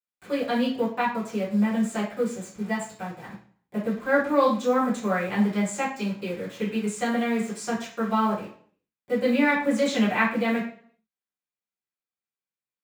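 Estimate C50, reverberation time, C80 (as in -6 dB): 6.0 dB, 0.50 s, 10.5 dB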